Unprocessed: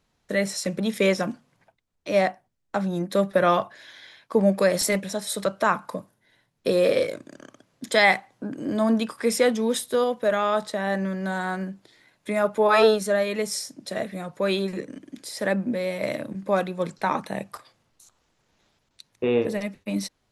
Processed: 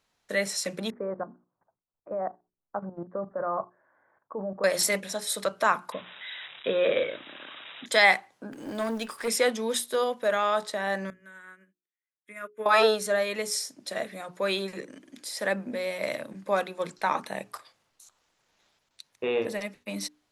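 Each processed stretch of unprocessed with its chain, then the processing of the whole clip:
0.9–4.64 steep low-pass 1300 Hz + level quantiser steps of 13 dB
5.92–7.86 switching spikes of -21.5 dBFS + brick-wall FIR low-pass 3900 Hz
8.52–9.28 G.711 law mismatch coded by mu + high shelf 11000 Hz +3.5 dB + tube stage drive 18 dB, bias 0.55
11.1–12.66 low shelf 220 Hz -10 dB + fixed phaser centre 1900 Hz, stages 4 + upward expander 2.5:1, over -50 dBFS
whole clip: low shelf 370 Hz -11.5 dB; notches 60/120/180/240/300/360/420 Hz

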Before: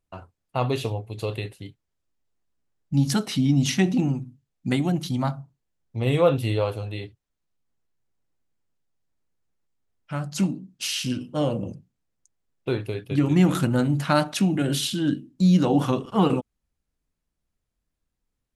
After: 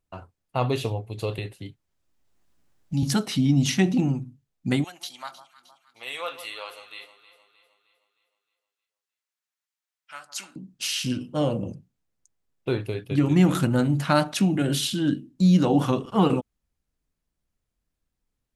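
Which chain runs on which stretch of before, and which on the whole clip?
1.38–3.03 notch 450 Hz, Q 9.6 + three-band squash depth 40%
4.84–10.56 HPF 1400 Hz + echo with dull and thin repeats by turns 0.155 s, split 1200 Hz, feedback 69%, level -12 dB
whole clip: dry

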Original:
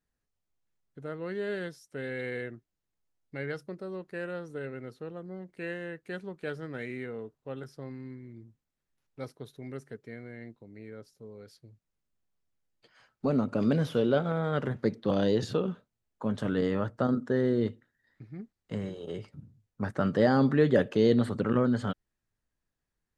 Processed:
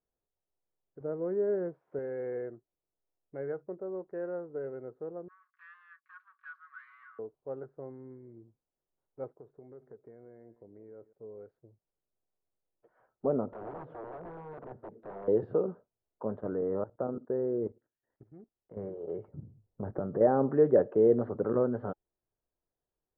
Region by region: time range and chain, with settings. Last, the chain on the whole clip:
1–1.99 switching spikes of -35.5 dBFS + BPF 110–3800 Hz + tilt -2.5 dB/oct
5.28–7.19 comb 5.4 ms, depth 59% + sample leveller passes 3 + rippled Chebyshev high-pass 1100 Hz, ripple 6 dB
9.29–11.13 compressor 5:1, threshold -44 dBFS + air absorption 240 m + feedback echo 0.18 s, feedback 18%, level -17 dB
13.5–15.28 compressor 5:1, threshold -36 dBFS + wrapped overs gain 34.5 dB
16.4–18.77 treble ducked by the level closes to 1800 Hz, closed at -26.5 dBFS + level quantiser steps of 15 dB
19.28–20.21 low shelf 440 Hz +11.5 dB + compressor, threshold -26 dBFS
whole clip: Chebyshev low-pass 1400 Hz, order 3; band shelf 550 Hz +10.5 dB; notch 840 Hz, Q 17; gain -8 dB

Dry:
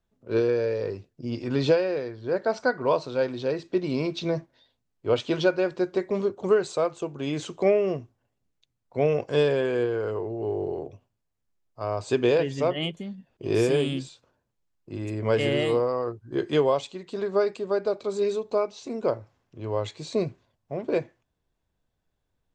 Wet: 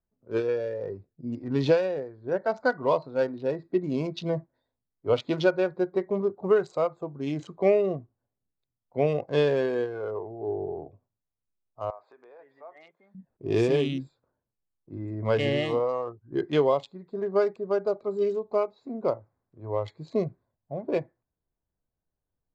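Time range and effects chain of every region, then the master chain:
11.9–13.15 compressor 4:1, threshold -32 dBFS + BPF 800–2800 Hz
whole clip: Wiener smoothing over 15 samples; LPF 6000 Hz 12 dB/oct; spectral noise reduction 8 dB

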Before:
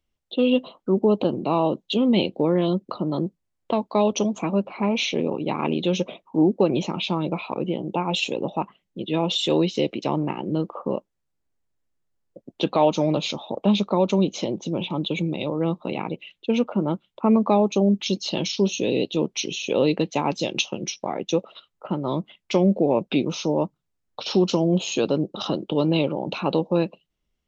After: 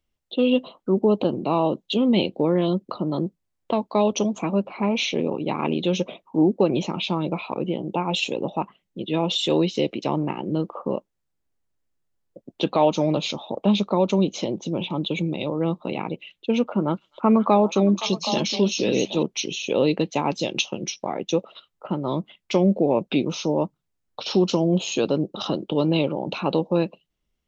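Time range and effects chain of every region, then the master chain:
16.64–19.23 dynamic EQ 1400 Hz, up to +6 dB, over -39 dBFS, Q 1.2 + delay with a stepping band-pass 0.257 s, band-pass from 5200 Hz, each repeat -1.4 oct, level -2 dB
whole clip: dry

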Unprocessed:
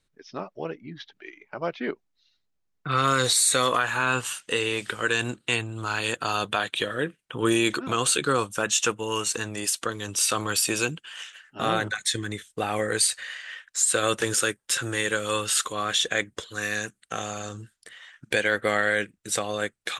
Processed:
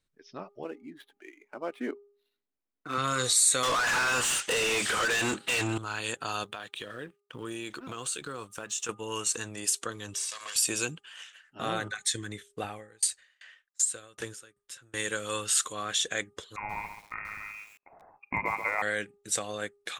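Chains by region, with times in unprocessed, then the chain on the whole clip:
0.63–2.98 median filter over 9 samples + resonant low shelf 200 Hz -7 dB, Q 3
3.63–5.78 compressor 2.5:1, threshold -31 dBFS + overdrive pedal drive 35 dB, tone 3400 Hz, clips at -12.5 dBFS
6.43–8.89 G.711 law mismatch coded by A + compressor 3:1, threshold -29 dBFS
10.14–10.56 minimum comb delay 1.8 ms + weighting filter ITU-R 468 + compressor 10:1, threshold -28 dBFS
12.64–14.94 low shelf 91 Hz +9.5 dB + dB-ramp tremolo decaying 2.6 Hz, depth 32 dB
16.56–18.82 inverted band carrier 2600 Hz + lo-fi delay 0.133 s, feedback 35%, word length 7-bit, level -7 dB
whole clip: de-hum 406.2 Hz, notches 3; dynamic EQ 7500 Hz, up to +7 dB, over -39 dBFS, Q 1.1; gain -7 dB

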